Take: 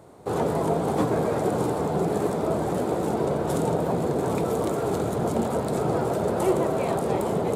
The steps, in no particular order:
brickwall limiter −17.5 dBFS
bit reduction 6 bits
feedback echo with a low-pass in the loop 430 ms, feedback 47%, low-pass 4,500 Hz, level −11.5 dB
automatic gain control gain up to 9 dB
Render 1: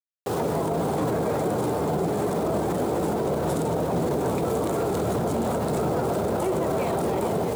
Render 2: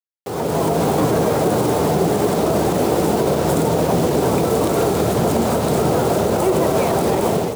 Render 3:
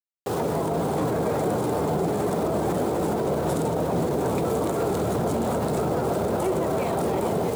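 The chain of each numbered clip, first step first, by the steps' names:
automatic gain control, then bit reduction, then feedback echo with a low-pass in the loop, then brickwall limiter
feedback echo with a low-pass in the loop, then bit reduction, then brickwall limiter, then automatic gain control
automatic gain control, then bit reduction, then brickwall limiter, then feedback echo with a low-pass in the loop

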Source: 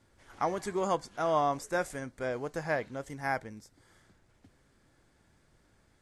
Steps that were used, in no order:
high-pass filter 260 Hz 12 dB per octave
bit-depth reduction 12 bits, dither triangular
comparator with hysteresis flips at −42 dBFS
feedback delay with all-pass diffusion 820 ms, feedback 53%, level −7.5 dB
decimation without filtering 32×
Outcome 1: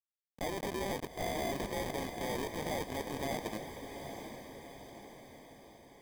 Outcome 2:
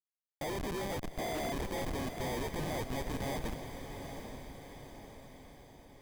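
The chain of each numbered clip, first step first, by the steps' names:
bit-depth reduction, then comparator with hysteresis, then high-pass filter, then decimation without filtering, then feedback delay with all-pass diffusion
decimation without filtering, then high-pass filter, then bit-depth reduction, then comparator with hysteresis, then feedback delay with all-pass diffusion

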